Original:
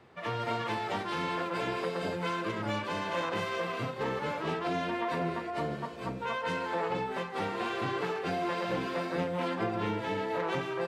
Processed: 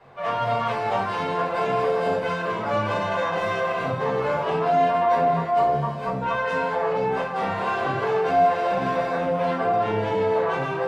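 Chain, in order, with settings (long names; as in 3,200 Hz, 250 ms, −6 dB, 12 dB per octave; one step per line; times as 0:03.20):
parametric band 900 Hz +8 dB 1.7 octaves
brickwall limiter −20 dBFS, peak gain reduction 5 dB
rectangular room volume 230 cubic metres, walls furnished, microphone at 5.1 metres
level −5.5 dB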